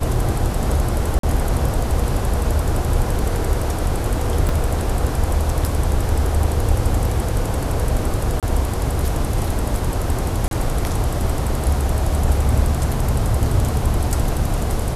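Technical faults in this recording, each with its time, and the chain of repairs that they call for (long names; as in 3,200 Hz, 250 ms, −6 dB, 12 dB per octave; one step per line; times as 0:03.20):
0:01.19–0:01.23: drop-out 43 ms
0:04.49: drop-out 2.6 ms
0:08.40–0:08.43: drop-out 27 ms
0:10.48–0:10.51: drop-out 32 ms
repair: repair the gap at 0:01.19, 43 ms
repair the gap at 0:04.49, 2.6 ms
repair the gap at 0:08.40, 27 ms
repair the gap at 0:10.48, 32 ms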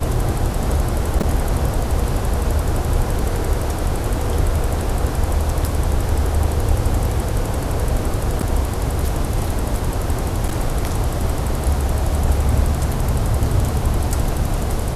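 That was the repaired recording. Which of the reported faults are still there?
none of them is left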